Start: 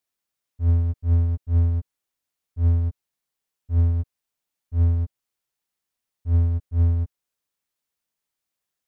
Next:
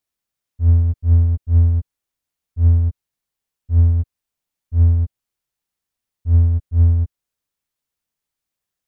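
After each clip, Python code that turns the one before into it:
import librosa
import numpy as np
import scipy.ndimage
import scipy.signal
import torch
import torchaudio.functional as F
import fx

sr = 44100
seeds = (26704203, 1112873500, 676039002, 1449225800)

y = fx.low_shelf(x, sr, hz=150.0, db=8.0)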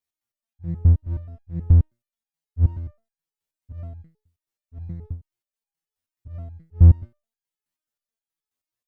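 y = fx.self_delay(x, sr, depth_ms=0.65)
y = fx.resonator_held(y, sr, hz=9.4, low_hz=85.0, high_hz=820.0)
y = F.gain(torch.from_numpy(y), 4.0).numpy()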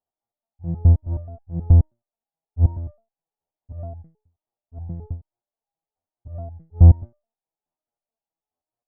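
y = fx.lowpass_res(x, sr, hz=760.0, q=3.4)
y = F.gain(torch.from_numpy(y), 1.5).numpy()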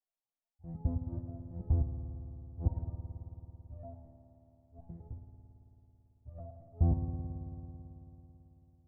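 y = fx.chorus_voices(x, sr, voices=4, hz=0.45, base_ms=17, depth_ms=2.6, mix_pct=50)
y = fx.rev_spring(y, sr, rt60_s=3.6, pass_ms=(55,), chirp_ms=50, drr_db=4.5)
y = F.gain(torch.from_numpy(y), -8.5).numpy()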